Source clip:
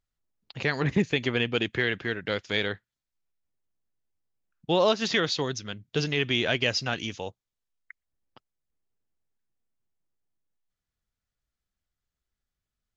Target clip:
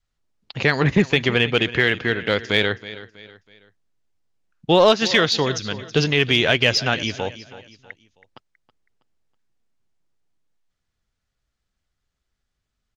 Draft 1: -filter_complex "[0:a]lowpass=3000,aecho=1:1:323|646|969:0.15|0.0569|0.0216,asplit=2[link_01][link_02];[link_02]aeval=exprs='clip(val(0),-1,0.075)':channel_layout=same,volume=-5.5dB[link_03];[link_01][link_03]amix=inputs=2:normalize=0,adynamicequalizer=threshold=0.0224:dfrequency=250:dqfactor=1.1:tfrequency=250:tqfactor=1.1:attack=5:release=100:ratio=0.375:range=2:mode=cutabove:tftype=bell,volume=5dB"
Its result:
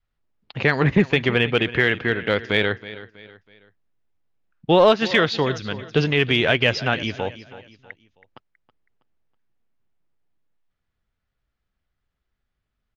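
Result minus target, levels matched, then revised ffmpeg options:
8,000 Hz band −10.5 dB
-filter_complex "[0:a]lowpass=7300,aecho=1:1:323|646|969:0.15|0.0569|0.0216,asplit=2[link_01][link_02];[link_02]aeval=exprs='clip(val(0),-1,0.075)':channel_layout=same,volume=-5.5dB[link_03];[link_01][link_03]amix=inputs=2:normalize=0,adynamicequalizer=threshold=0.0224:dfrequency=250:dqfactor=1.1:tfrequency=250:tqfactor=1.1:attack=5:release=100:ratio=0.375:range=2:mode=cutabove:tftype=bell,volume=5dB"

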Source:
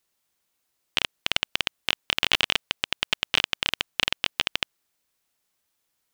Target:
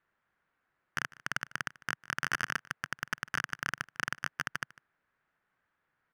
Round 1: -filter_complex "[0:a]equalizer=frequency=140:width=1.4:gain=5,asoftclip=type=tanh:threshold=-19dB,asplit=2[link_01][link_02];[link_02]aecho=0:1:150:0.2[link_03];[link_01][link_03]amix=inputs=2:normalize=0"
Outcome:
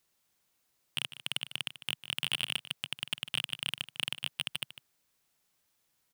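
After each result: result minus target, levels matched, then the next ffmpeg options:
2,000 Hz band −7.5 dB; echo-to-direct +7.5 dB
-filter_complex "[0:a]lowpass=frequency=1600:width_type=q:width=3,equalizer=frequency=140:width=1.4:gain=5,asoftclip=type=tanh:threshold=-19dB,asplit=2[link_01][link_02];[link_02]aecho=0:1:150:0.2[link_03];[link_01][link_03]amix=inputs=2:normalize=0"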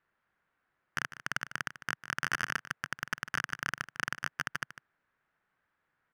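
echo-to-direct +7.5 dB
-filter_complex "[0:a]lowpass=frequency=1600:width_type=q:width=3,equalizer=frequency=140:width=1.4:gain=5,asoftclip=type=tanh:threshold=-19dB,asplit=2[link_01][link_02];[link_02]aecho=0:1:150:0.0841[link_03];[link_01][link_03]amix=inputs=2:normalize=0"

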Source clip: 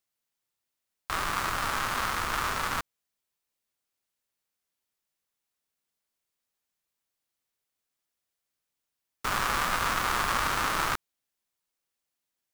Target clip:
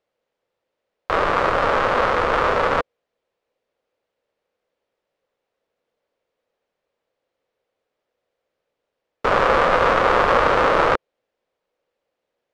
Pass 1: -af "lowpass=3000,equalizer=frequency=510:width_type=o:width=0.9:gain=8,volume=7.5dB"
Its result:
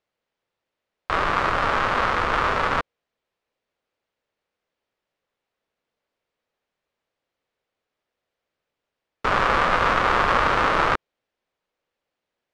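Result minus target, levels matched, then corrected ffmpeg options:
500 Hz band −5.0 dB
-af "lowpass=3000,equalizer=frequency=510:width_type=o:width=0.9:gain=18,volume=7.5dB"

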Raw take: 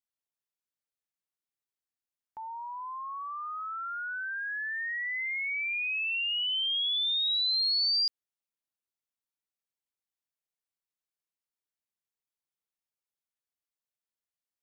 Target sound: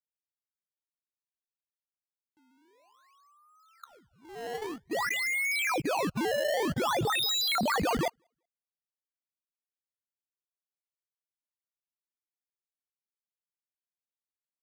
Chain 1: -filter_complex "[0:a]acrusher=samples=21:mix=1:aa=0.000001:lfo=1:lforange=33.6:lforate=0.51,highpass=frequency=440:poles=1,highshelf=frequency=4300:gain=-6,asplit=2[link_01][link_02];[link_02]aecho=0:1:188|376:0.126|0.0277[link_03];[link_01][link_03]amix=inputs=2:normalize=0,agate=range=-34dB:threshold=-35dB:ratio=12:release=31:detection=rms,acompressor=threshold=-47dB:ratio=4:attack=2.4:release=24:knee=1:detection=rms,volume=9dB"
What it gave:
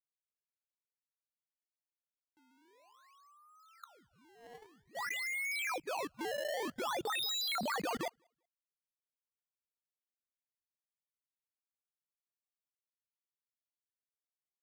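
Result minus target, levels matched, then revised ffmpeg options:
downward compressor: peak gain reduction +7.5 dB; 250 Hz band −4.0 dB
-filter_complex "[0:a]acrusher=samples=21:mix=1:aa=0.000001:lfo=1:lforange=33.6:lforate=0.51,highpass=frequency=180:poles=1,highshelf=frequency=4300:gain=-6,asplit=2[link_01][link_02];[link_02]aecho=0:1:188|376:0.126|0.0277[link_03];[link_01][link_03]amix=inputs=2:normalize=0,agate=range=-34dB:threshold=-35dB:ratio=12:release=31:detection=rms,acompressor=threshold=-37dB:ratio=4:attack=2.4:release=24:knee=1:detection=rms,volume=9dB"

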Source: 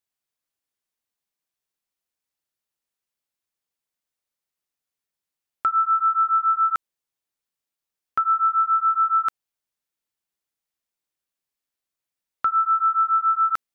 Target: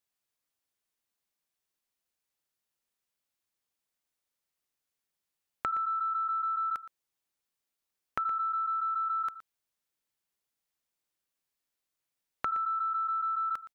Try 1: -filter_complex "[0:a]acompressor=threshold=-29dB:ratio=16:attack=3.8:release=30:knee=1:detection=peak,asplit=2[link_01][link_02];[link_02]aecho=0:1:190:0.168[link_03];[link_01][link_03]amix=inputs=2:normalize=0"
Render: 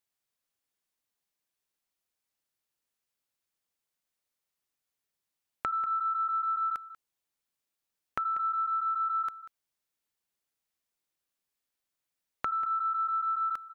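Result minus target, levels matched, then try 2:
echo 72 ms late
-filter_complex "[0:a]acompressor=threshold=-29dB:ratio=16:attack=3.8:release=30:knee=1:detection=peak,asplit=2[link_01][link_02];[link_02]aecho=0:1:118:0.168[link_03];[link_01][link_03]amix=inputs=2:normalize=0"

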